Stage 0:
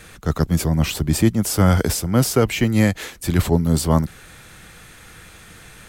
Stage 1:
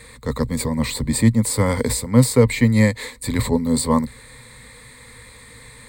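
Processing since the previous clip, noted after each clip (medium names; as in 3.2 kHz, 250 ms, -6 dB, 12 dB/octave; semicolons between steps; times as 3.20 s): rippled EQ curve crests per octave 0.98, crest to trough 15 dB; trim -2.5 dB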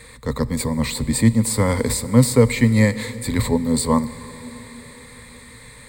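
reverberation RT60 5.0 s, pre-delay 5 ms, DRR 14.5 dB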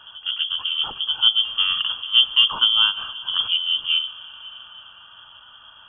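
Butterworth band-stop 1.1 kHz, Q 1.3; frequency inversion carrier 3.3 kHz; reverse echo 936 ms -17 dB; trim -3 dB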